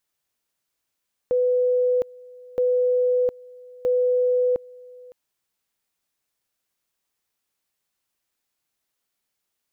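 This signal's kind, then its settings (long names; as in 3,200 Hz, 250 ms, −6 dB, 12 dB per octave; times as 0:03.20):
tone at two levels in turn 498 Hz −17 dBFS, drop 24 dB, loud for 0.71 s, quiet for 0.56 s, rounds 3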